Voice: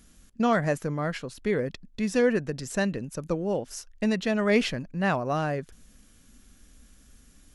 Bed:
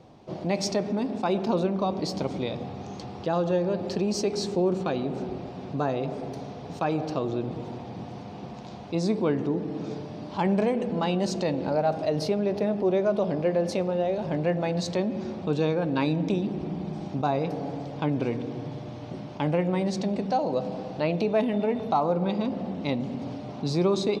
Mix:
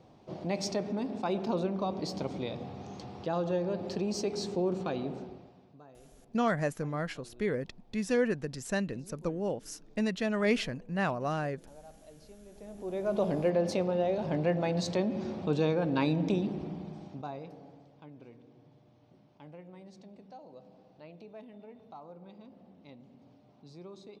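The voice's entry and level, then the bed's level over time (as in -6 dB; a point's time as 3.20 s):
5.95 s, -5.0 dB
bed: 5.08 s -6 dB
5.84 s -28 dB
12.47 s -28 dB
13.20 s -3 dB
16.41 s -3 dB
18.03 s -24.5 dB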